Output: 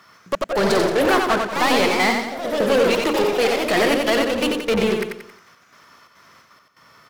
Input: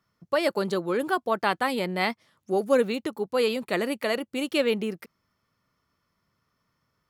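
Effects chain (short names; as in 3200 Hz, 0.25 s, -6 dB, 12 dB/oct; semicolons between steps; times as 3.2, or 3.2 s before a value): notches 60/120/180/240/300/360/420/480/540 Hz; soft clip -22 dBFS, distortion -11 dB; step gate "xx.x..xxxx.x" 173 bpm -60 dB; overdrive pedal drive 25 dB, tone 4700 Hz, clips at -22 dBFS; on a send: feedback echo 90 ms, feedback 42%, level -4.5 dB; on the sum: echoes that change speed 0.125 s, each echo +2 st, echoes 3, each echo -6 dB; gain +8 dB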